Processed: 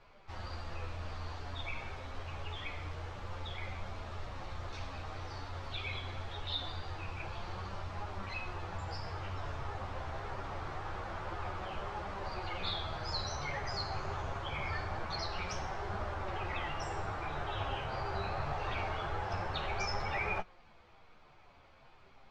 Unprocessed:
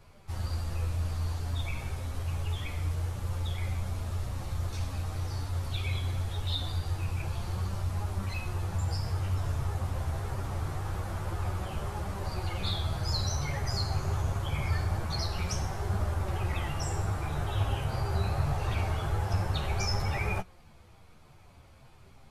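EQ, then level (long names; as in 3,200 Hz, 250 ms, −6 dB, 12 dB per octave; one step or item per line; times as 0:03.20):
high-frequency loss of the air 190 metres
parametric band 96 Hz −10.5 dB 2.7 octaves
low-shelf EQ 450 Hz −5 dB
+2.5 dB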